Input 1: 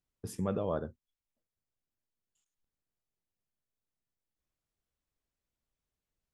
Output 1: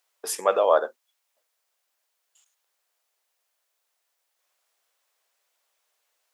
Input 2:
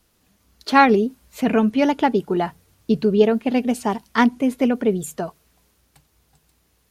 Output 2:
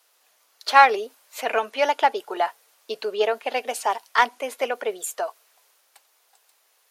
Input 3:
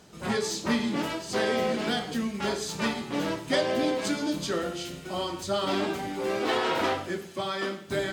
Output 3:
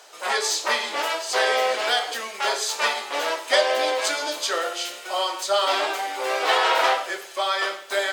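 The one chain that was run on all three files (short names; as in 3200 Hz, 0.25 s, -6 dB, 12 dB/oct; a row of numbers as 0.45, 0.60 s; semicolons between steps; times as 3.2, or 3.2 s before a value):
HPF 560 Hz 24 dB/oct; in parallel at -8 dB: soft clip -18 dBFS; on the sum: match loudness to -23 LUFS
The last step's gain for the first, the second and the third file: +15.0, 0.0, +6.0 dB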